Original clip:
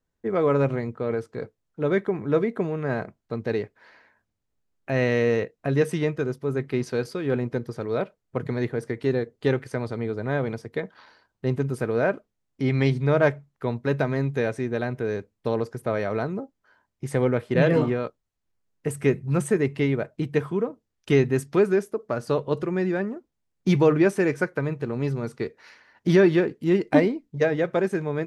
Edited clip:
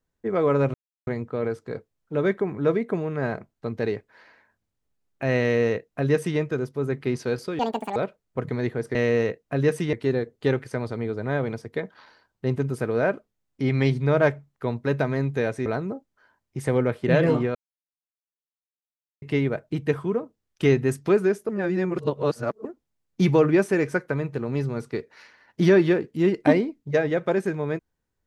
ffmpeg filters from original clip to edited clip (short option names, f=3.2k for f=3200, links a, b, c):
-filter_complex "[0:a]asplit=11[a][b][c][d][e][f][g][h][i][j][k];[a]atrim=end=0.74,asetpts=PTS-STARTPTS,afade=t=out:st=0.736:d=0.004:c=hsin,apad=pad_dur=0.33[l];[b]atrim=start=0.74:end=7.264,asetpts=PTS-STARTPTS,afade=t=in:d=0.004:c=hsin[m];[c]atrim=start=7.26:end=7.94,asetpts=PTS-STARTPTS,asetrate=81144,aresample=44100[n];[d]atrim=start=7.936:end=8.932[o];[e]atrim=start=5.078:end=6.062[p];[f]atrim=start=8.928:end=14.662[q];[g]atrim=start=16.128:end=18.02,asetpts=PTS-STARTPTS,afade=t=out:st=1.888:d=0.004:c=hsin[r];[h]atrim=start=18.02:end=19.69,asetpts=PTS-STARTPTS,volume=0[s];[i]atrim=start=19.69:end=21.962,asetpts=PTS-STARTPTS,afade=t=in:d=0.004:c=hsin[t];[j]atrim=start=21.958:end=23.122,asetpts=PTS-STARTPTS,areverse[u];[k]atrim=start=23.118[v];[l][m]concat=n=2:v=0:a=1[w];[w][n]acrossfade=d=0.004:c1=hsin:c2=hsin[x];[x][o]acrossfade=d=0.004:c1=hsin:c2=hsin[y];[y][p]acrossfade=d=0.004:c1=hsin:c2=hsin[z];[z][q]acrossfade=d=0.004:c1=hsin:c2=hsin[aa];[r][s][t]concat=n=3:v=0:a=1[ab];[aa][ab]acrossfade=d=0.004:c1=hsin:c2=hsin[ac];[ac][u]acrossfade=d=0.004:c1=hsin:c2=hsin[ad];[ad][v]acrossfade=d=0.004:c1=hsin:c2=hsin"